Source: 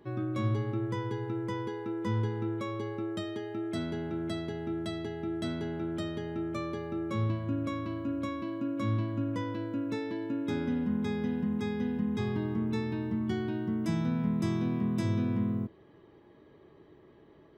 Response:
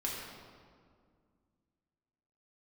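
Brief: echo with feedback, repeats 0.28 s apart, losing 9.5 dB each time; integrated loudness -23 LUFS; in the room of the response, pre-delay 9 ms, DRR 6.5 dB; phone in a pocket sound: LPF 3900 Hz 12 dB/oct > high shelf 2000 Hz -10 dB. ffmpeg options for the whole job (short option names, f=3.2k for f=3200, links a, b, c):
-filter_complex "[0:a]aecho=1:1:280|560|840|1120:0.335|0.111|0.0365|0.012,asplit=2[a][b];[1:a]atrim=start_sample=2205,adelay=9[c];[b][c]afir=irnorm=-1:irlink=0,volume=-10dB[d];[a][d]amix=inputs=2:normalize=0,lowpass=3.9k,highshelf=f=2k:g=-10,volume=7.5dB"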